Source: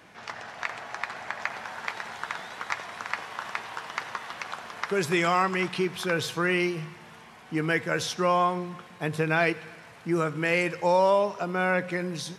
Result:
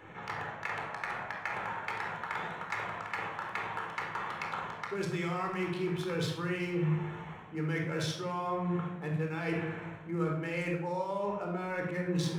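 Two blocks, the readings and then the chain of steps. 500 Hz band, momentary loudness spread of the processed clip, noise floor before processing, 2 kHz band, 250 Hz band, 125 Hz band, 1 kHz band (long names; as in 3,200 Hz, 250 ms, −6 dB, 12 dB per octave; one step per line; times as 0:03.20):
−8.5 dB, 5 LU, −49 dBFS, −8.0 dB, −4.0 dB, 0.0 dB, −7.5 dB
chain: adaptive Wiener filter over 9 samples
reversed playback
downward compressor 10 to 1, threshold −36 dBFS, peak gain reduction 18.5 dB
reversed playback
rectangular room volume 2,000 cubic metres, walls furnished, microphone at 4.2 metres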